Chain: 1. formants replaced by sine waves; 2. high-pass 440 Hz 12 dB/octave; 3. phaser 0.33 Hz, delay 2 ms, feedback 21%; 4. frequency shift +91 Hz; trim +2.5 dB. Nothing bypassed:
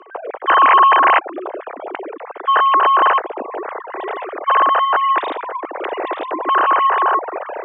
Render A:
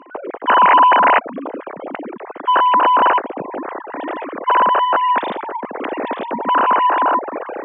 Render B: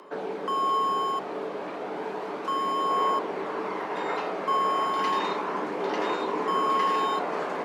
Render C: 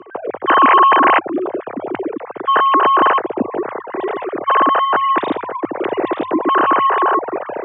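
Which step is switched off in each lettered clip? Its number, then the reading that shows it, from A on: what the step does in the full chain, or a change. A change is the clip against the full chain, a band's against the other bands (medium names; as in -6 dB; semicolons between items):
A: 4, 250 Hz band +4.5 dB; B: 1, 250 Hz band +10.0 dB; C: 2, momentary loudness spread change -4 LU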